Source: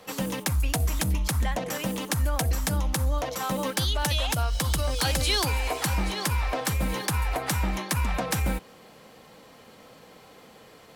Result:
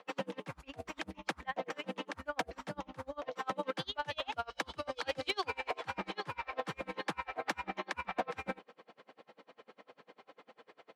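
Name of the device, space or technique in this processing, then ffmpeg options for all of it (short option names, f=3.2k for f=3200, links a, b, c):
helicopter radio: -af "highpass=320,lowpass=2.8k,aeval=exprs='val(0)*pow(10,-32*(0.5-0.5*cos(2*PI*10*n/s))/20)':c=same,asoftclip=type=hard:threshold=-25dB"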